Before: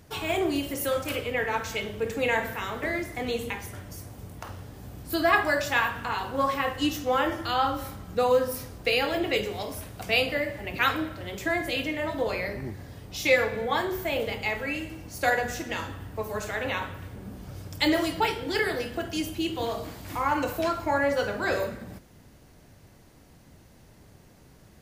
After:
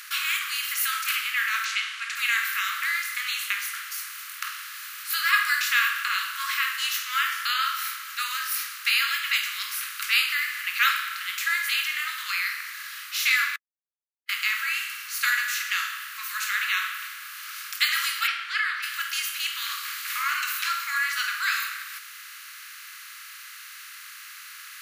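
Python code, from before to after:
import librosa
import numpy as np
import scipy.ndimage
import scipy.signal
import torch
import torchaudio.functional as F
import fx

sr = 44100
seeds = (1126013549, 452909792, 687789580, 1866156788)

y = fx.bessel_lowpass(x, sr, hz=5800.0, order=6, at=(1.64, 2.15), fade=0.02)
y = fx.lowpass(y, sr, hz=fx.line((18.26, 3100.0), (18.82, 1700.0)), slope=12, at=(18.26, 18.82), fade=0.02)
y = fx.edit(y, sr, fx.silence(start_s=13.56, length_s=0.73), tone=tone)
y = fx.bin_compress(y, sr, power=0.6)
y = scipy.signal.sosfilt(scipy.signal.butter(12, 1200.0, 'highpass', fs=sr, output='sos'), y)
y = fx.high_shelf(y, sr, hz=5800.0, db=6.5)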